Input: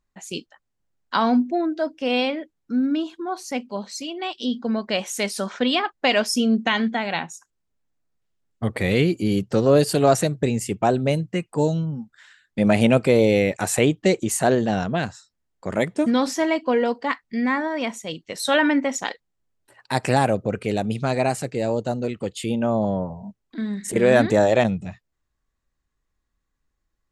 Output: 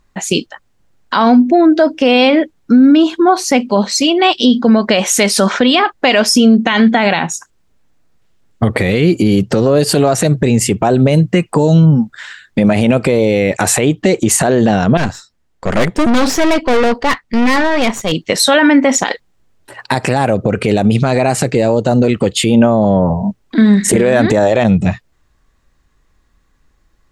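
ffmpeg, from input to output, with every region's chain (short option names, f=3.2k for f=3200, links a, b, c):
-filter_complex "[0:a]asettb=1/sr,asplit=3[a][b][c];[a]atrim=end=14.974[d];[b]atrim=start=14.97:end=18.12,asetpts=PTS-STARTPTS,afade=t=in:d=0.004:c=qsin,afade=t=out:st=3.146:d=0.004:c=qsin,highshelf=f=8.3k:g=-2,aeval=exprs='(tanh(31.6*val(0)+0.8)-tanh(0.8))/31.6':c=same[e];[c]atrim=start=18.116[f];[d][e]acrossfade=d=0.004:c1=hsin:c2=qsin[g];[g][f]acrossfade=d=0.004:c1=qsin:c2=hsin,highshelf=f=7.4k:g=-6.5,acompressor=threshold=-22dB:ratio=6,alimiter=level_in=21dB:limit=-1dB:release=50:level=0:latency=1,volume=-1dB"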